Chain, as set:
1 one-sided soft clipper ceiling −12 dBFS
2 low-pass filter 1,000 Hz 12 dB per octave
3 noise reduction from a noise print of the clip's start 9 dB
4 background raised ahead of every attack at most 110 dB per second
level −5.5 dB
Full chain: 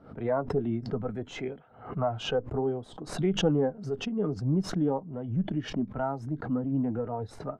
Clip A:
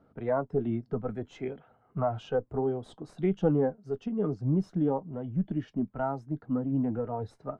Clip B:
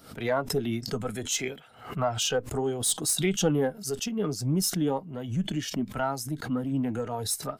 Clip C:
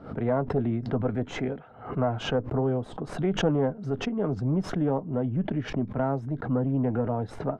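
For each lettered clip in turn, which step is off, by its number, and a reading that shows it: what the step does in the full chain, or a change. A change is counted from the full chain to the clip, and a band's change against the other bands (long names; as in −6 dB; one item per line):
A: 4, 2 kHz band −5.0 dB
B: 2, 8 kHz band +18.0 dB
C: 3, 8 kHz band −4.5 dB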